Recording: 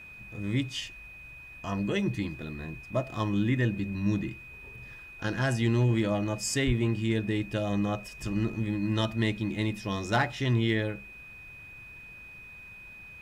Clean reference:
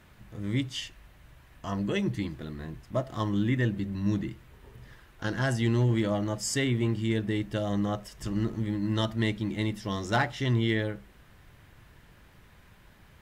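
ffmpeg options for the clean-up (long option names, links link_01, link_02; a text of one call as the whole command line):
ffmpeg -i in.wav -filter_complex "[0:a]bandreject=frequency=2500:width=30,asplit=3[link_01][link_02][link_03];[link_01]afade=type=out:start_time=6.66:duration=0.02[link_04];[link_02]highpass=frequency=140:width=0.5412,highpass=frequency=140:width=1.3066,afade=type=in:start_time=6.66:duration=0.02,afade=type=out:start_time=6.78:duration=0.02[link_05];[link_03]afade=type=in:start_time=6.78:duration=0.02[link_06];[link_04][link_05][link_06]amix=inputs=3:normalize=0" out.wav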